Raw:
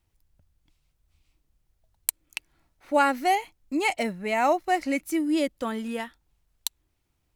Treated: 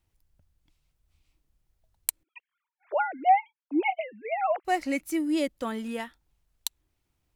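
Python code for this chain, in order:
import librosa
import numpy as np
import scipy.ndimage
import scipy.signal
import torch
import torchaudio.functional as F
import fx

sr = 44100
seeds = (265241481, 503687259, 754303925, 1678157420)

y = fx.sine_speech(x, sr, at=(2.23, 4.65))
y = y * librosa.db_to_amplitude(-2.0)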